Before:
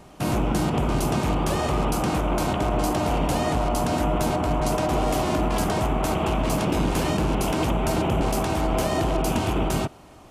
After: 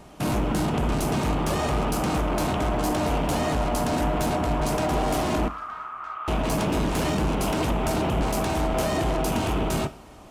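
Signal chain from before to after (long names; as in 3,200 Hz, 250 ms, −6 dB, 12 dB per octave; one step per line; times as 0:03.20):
in parallel at −5 dB: wave folding −22.5 dBFS
0:05.48–0:06.28: on the sum: four-pole ladder band-pass 1,300 Hz, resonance 85%
coupled-rooms reverb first 0.36 s, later 2.8 s, from −22 dB, DRR 10.5 dB
level −3.5 dB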